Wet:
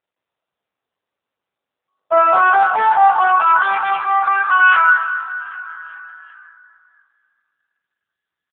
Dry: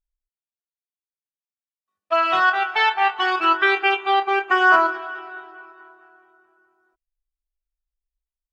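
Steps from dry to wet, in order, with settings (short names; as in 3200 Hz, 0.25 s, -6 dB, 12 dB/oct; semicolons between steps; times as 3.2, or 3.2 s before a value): self-modulated delay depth 0.19 ms; in parallel at -3.5 dB: wavefolder -15 dBFS; on the sum: resonant high shelf 1700 Hz -7.5 dB, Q 1.5; on a send: frequency-shifting echo 0.394 s, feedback 53%, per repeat +55 Hz, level -22 dB; on the sum: transient shaper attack -4 dB, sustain +8 dB; high-pass sweep 500 Hz -> 1600 Hz, 2.39–4.89; de-hum 168.6 Hz, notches 22; AGC gain up to 4 dB; AMR-NB 7.95 kbps 8000 Hz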